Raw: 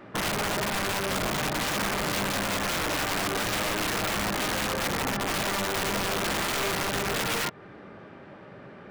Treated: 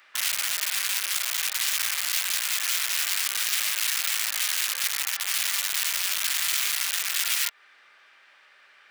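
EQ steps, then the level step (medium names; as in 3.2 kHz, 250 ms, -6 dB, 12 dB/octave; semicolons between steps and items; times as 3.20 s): Chebyshev high-pass 2.1 kHz, order 2; treble shelf 4.6 kHz +11.5 dB; 0.0 dB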